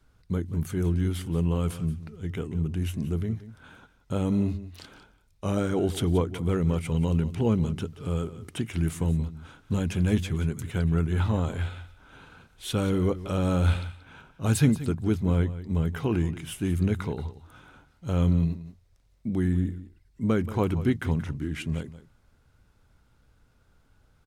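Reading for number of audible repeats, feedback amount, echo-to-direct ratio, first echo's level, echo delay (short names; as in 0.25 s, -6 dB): 1, no steady repeat, -15.0 dB, -15.0 dB, 0.179 s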